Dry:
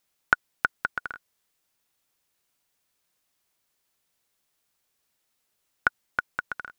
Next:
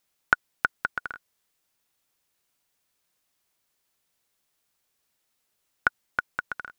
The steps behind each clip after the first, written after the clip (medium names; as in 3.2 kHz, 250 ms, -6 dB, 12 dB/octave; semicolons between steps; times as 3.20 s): no audible change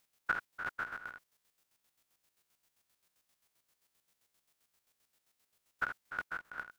spectrogram pixelated in time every 100 ms; square tremolo 7.6 Hz, depth 60%, duty 40%; trim +3 dB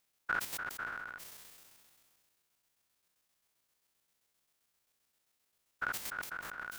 decay stretcher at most 25 dB/s; trim -3.5 dB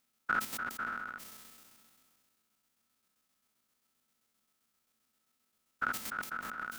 small resonant body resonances 230/1300 Hz, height 13 dB, ringing for 60 ms